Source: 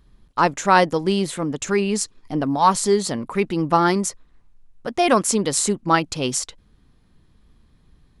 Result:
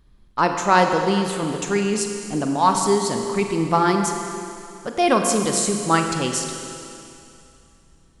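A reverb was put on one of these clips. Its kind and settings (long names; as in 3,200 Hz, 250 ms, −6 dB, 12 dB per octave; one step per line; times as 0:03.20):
four-comb reverb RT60 2.7 s, combs from 33 ms, DRR 4 dB
level −1.5 dB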